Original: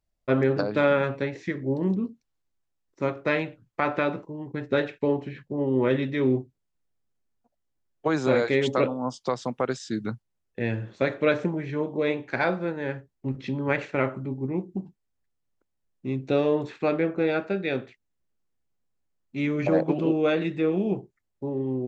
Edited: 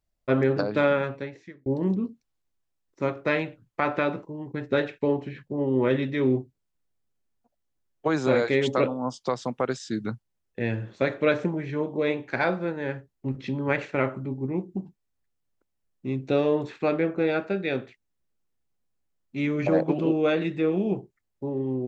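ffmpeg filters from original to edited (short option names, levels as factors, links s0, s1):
-filter_complex "[0:a]asplit=2[s0][s1];[s0]atrim=end=1.66,asetpts=PTS-STARTPTS,afade=t=out:st=0.81:d=0.85[s2];[s1]atrim=start=1.66,asetpts=PTS-STARTPTS,afade=t=in:d=0.004:c=hsin[s3];[s2][s3]concat=n=2:v=0:a=1"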